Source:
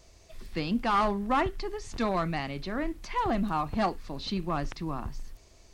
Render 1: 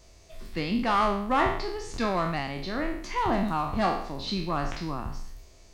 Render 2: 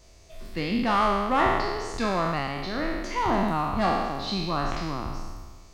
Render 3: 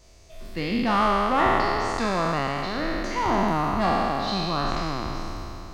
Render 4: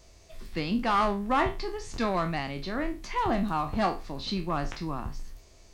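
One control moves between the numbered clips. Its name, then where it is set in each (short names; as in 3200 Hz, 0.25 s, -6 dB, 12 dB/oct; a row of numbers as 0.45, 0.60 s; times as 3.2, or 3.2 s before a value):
spectral trails, RT60: 0.64, 1.49, 3.17, 0.3 s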